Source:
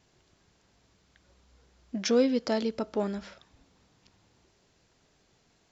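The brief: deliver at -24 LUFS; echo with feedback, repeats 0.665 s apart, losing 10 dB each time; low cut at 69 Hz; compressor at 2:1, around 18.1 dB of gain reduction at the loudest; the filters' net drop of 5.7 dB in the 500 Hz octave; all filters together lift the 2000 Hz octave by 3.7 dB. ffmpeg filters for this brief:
-af "highpass=69,equalizer=f=500:t=o:g=-6.5,equalizer=f=2k:t=o:g=5,acompressor=threshold=-58dB:ratio=2,aecho=1:1:665|1330|1995|2660:0.316|0.101|0.0324|0.0104,volume=25.5dB"

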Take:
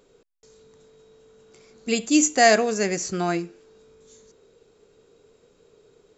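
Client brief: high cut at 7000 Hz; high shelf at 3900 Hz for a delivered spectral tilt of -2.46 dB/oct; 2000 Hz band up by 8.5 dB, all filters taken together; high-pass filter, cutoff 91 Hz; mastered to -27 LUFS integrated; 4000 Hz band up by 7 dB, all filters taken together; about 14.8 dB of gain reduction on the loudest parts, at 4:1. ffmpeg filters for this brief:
-af "highpass=91,lowpass=7k,equalizer=f=2k:t=o:g=8,highshelf=f=3.9k:g=3.5,equalizer=f=4k:t=o:g=5,acompressor=threshold=-25dB:ratio=4,volume=0.5dB"

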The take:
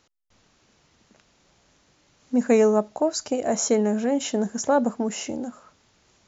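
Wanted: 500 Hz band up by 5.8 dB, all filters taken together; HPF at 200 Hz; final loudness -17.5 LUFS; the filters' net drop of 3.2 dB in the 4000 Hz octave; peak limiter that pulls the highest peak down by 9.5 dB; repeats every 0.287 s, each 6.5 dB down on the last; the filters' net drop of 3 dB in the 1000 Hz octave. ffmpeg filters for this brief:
-af "highpass=200,equalizer=f=500:t=o:g=9,equalizer=f=1k:t=o:g=-8.5,equalizer=f=4k:t=o:g=-4.5,alimiter=limit=-14.5dB:level=0:latency=1,aecho=1:1:287|574|861|1148|1435|1722:0.473|0.222|0.105|0.0491|0.0231|0.0109,volume=6dB"

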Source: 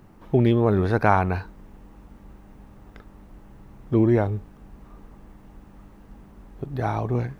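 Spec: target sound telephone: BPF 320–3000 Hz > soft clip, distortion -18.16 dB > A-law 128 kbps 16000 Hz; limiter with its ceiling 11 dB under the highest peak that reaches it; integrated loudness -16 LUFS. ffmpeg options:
-af "alimiter=limit=-14dB:level=0:latency=1,highpass=320,lowpass=3k,asoftclip=threshold=-18.5dB,volume=15dB" -ar 16000 -c:a pcm_alaw

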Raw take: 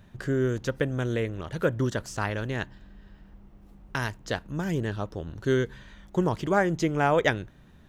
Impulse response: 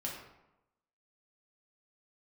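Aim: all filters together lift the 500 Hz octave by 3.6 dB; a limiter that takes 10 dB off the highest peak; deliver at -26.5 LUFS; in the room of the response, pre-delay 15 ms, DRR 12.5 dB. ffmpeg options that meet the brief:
-filter_complex "[0:a]equalizer=f=500:t=o:g=4.5,alimiter=limit=-17.5dB:level=0:latency=1,asplit=2[a][b];[1:a]atrim=start_sample=2205,adelay=15[c];[b][c]afir=irnorm=-1:irlink=0,volume=-13.5dB[d];[a][d]amix=inputs=2:normalize=0,volume=2.5dB"

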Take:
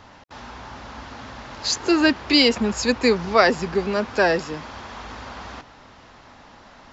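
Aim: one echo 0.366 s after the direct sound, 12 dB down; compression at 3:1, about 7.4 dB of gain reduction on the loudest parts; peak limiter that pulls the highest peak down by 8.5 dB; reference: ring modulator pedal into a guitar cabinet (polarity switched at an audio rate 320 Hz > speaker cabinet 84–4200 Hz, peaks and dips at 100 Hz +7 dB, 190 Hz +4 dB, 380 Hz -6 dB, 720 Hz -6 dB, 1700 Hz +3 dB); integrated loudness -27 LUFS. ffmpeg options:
-af "acompressor=threshold=-22dB:ratio=3,alimiter=limit=-19.5dB:level=0:latency=1,aecho=1:1:366:0.251,aeval=exprs='val(0)*sgn(sin(2*PI*320*n/s))':c=same,highpass=84,equalizer=f=100:t=q:w=4:g=7,equalizer=f=190:t=q:w=4:g=4,equalizer=f=380:t=q:w=4:g=-6,equalizer=f=720:t=q:w=4:g=-6,equalizer=f=1.7k:t=q:w=4:g=3,lowpass=f=4.2k:w=0.5412,lowpass=f=4.2k:w=1.3066,volume=4.5dB"

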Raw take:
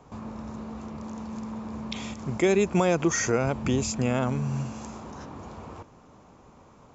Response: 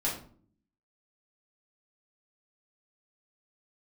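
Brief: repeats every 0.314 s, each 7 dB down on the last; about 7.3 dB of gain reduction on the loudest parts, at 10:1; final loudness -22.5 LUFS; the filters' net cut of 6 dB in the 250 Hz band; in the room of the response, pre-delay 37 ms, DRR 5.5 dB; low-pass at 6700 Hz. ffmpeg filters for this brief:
-filter_complex "[0:a]lowpass=6.7k,equalizer=f=250:t=o:g=-9,acompressor=threshold=-28dB:ratio=10,aecho=1:1:314|628|942|1256|1570:0.447|0.201|0.0905|0.0407|0.0183,asplit=2[a][b];[1:a]atrim=start_sample=2205,adelay=37[c];[b][c]afir=irnorm=-1:irlink=0,volume=-12dB[d];[a][d]amix=inputs=2:normalize=0,volume=11dB"

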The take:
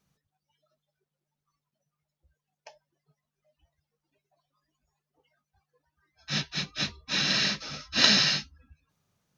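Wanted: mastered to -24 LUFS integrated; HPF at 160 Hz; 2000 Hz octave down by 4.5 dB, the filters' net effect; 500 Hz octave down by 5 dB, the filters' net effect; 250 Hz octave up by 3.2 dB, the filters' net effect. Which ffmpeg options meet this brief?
-af "highpass=160,equalizer=f=250:t=o:g=7.5,equalizer=f=500:t=o:g=-8.5,equalizer=f=2k:t=o:g=-5.5,volume=2.5dB"

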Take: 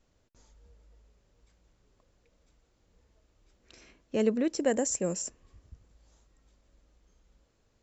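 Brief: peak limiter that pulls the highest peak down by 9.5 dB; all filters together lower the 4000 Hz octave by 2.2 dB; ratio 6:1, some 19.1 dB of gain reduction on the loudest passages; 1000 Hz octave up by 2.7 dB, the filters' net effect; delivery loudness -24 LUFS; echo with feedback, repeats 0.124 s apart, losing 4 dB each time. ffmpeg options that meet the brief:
-af "equalizer=f=1k:t=o:g=4.5,equalizer=f=4k:t=o:g=-4,acompressor=threshold=-42dB:ratio=6,alimiter=level_in=16dB:limit=-24dB:level=0:latency=1,volume=-16dB,aecho=1:1:124|248|372|496|620|744|868|992|1116:0.631|0.398|0.25|0.158|0.0994|0.0626|0.0394|0.0249|0.0157,volume=25.5dB"

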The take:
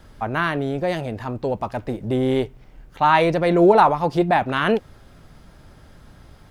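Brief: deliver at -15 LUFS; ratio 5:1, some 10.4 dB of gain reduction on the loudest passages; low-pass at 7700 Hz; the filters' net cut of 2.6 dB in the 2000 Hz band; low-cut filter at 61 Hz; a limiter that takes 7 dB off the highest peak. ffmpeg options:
-af "highpass=61,lowpass=7.7k,equalizer=f=2k:t=o:g=-3.5,acompressor=threshold=-22dB:ratio=5,volume=14dB,alimiter=limit=-5.5dB:level=0:latency=1"

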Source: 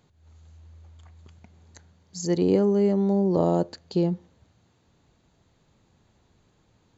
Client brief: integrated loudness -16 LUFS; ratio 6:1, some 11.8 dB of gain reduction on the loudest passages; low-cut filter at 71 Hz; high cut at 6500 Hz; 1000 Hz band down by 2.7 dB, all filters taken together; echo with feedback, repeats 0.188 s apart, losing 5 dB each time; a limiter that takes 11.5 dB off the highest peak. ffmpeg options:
-af "highpass=71,lowpass=6.5k,equalizer=f=1k:t=o:g=-4,acompressor=threshold=-30dB:ratio=6,alimiter=level_in=7.5dB:limit=-24dB:level=0:latency=1,volume=-7.5dB,aecho=1:1:188|376|564|752|940|1128|1316:0.562|0.315|0.176|0.0988|0.0553|0.031|0.0173,volume=24dB"

